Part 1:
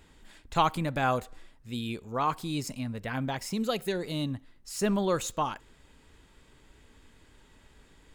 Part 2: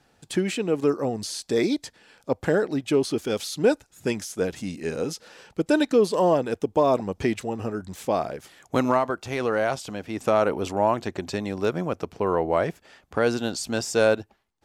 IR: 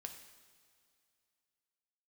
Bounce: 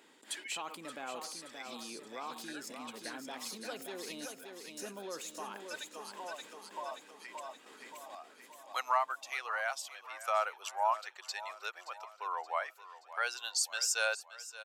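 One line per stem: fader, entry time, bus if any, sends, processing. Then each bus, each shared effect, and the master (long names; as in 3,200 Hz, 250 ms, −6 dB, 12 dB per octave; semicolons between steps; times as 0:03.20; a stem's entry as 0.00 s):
−19.5 dB, 0.00 s, muted 0:04.26–0:04.77, no send, echo send −6 dB, noise gate with hold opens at −46 dBFS; envelope flattener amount 70%
−2.5 dB, 0.00 s, no send, echo send −15.5 dB, spectral dynamics exaggerated over time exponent 1.5; high-pass filter 830 Hz 24 dB per octave; high-shelf EQ 3,700 Hz +6.5 dB; automatic ducking −12 dB, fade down 1.35 s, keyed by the first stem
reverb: not used
echo: repeating echo 575 ms, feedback 52%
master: high-pass filter 260 Hz 24 dB per octave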